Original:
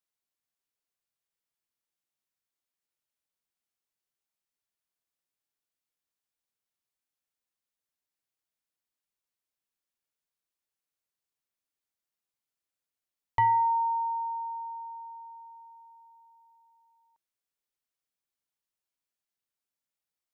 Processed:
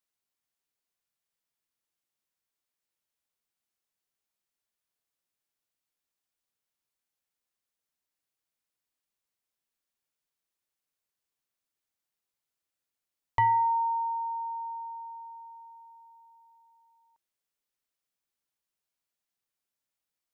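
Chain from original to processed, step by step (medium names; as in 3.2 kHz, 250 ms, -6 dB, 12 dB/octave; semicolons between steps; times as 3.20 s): dynamic bell 550 Hz, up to -5 dB, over -40 dBFS, Q 1.2; trim +1.5 dB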